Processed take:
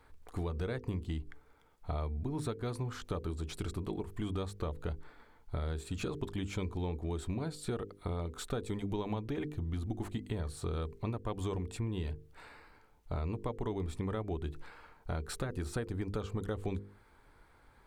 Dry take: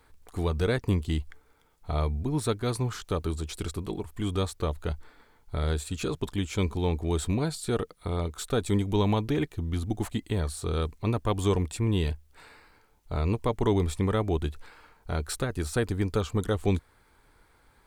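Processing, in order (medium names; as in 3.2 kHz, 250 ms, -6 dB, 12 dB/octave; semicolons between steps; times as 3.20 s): treble shelf 3.4 kHz -8.5 dB; hum notches 50/100/150/200/250/300/350/400/450/500 Hz; compression, threshold -33 dBFS, peak gain reduction 12.5 dB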